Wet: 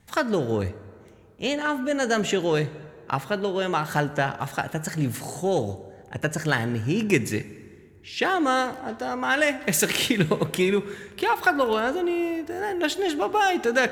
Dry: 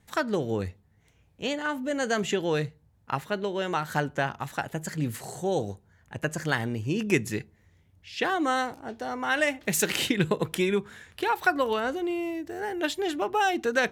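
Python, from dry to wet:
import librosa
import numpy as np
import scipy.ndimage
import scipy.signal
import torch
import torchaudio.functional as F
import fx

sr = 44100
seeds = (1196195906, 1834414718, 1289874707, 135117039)

p1 = 10.0 ** (-24.5 / 20.0) * np.tanh(x / 10.0 ** (-24.5 / 20.0))
p2 = x + (p1 * librosa.db_to_amplitude(-8.0))
p3 = fx.rev_plate(p2, sr, seeds[0], rt60_s=2.2, hf_ratio=0.55, predelay_ms=0, drr_db=14.5)
y = p3 * librosa.db_to_amplitude(1.5)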